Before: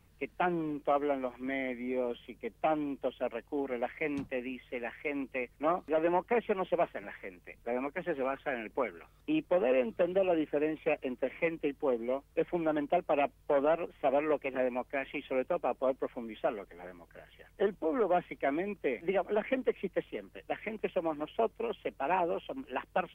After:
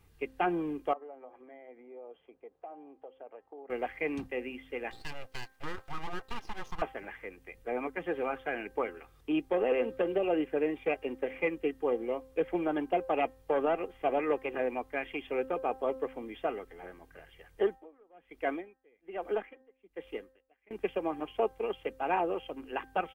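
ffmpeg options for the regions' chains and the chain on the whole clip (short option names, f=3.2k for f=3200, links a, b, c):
-filter_complex "[0:a]asettb=1/sr,asplit=3[a][b][c];[a]atrim=end=0.934[d];[b]atrim=start=0.93:end=3.7,asetpts=PTS-STARTPTS,afade=t=in:d=0.004:c=qsin,afade=t=out:st=2.766:d=0.004:c=qsin,acompressor=threshold=-41dB:ratio=5:attack=3.2:release=140:knee=1:detection=peak,bandpass=f=650:t=q:w=1.6[e];[c]atrim=start=3.696[f];[d][e]acrossfade=d=0.004:c1=hsin:c2=qsin[g];[g][f]acrossfade=d=0.004:c1=qsin:c2=hsin,asettb=1/sr,asplit=3[h][i][j];[h]atrim=end=4.914[k];[i]atrim=start=4.91:end=6.82,asetpts=PTS-STARTPTS,afade=t=in:d=0.004:c=qsin,afade=t=out:st=1.906:d=0.004:c=qsin,lowshelf=f=180:g=-11.5,acompressor=threshold=-34dB:ratio=2.5:attack=3.2:release=140:knee=1:detection=peak,aeval=exprs='abs(val(0))':c=same[l];[j]atrim=start=6.816[m];[k][l]acrossfade=d=0.004:c1=hsin:c2=qsin[n];[n][m]acrossfade=d=0.004:c1=qsin:c2=hsin,asettb=1/sr,asplit=3[o][p][q];[o]atrim=end=17.634[r];[p]atrim=start=17.63:end=20.71,asetpts=PTS-STARTPTS,afade=t=in:d=0.004:c=qsin,afade=t=out:st=3.076:d=0.004:c=qsin,equalizer=f=120:t=o:w=0.57:g=-14.5,aeval=exprs='val(0)*pow(10,-34*(0.5-0.5*cos(2*PI*1.2*n/s))/20)':c=same[s];[q]atrim=start=20.706[t];[r][s]acrossfade=d=0.004:c1=hsin:c2=qsin[u];[u][t]acrossfade=d=0.004:c1=qsin:c2=hsin,aecho=1:1:2.5:0.38,bandreject=f=262.5:t=h:w=4,bandreject=f=525:t=h:w=4,bandreject=f=787.5:t=h:w=4,bandreject=f=1.05k:t=h:w=4,bandreject=f=1.3125k:t=h:w=4,bandreject=f=1.575k:t=h:w=4,bandreject=f=1.8375k:t=h:w=4"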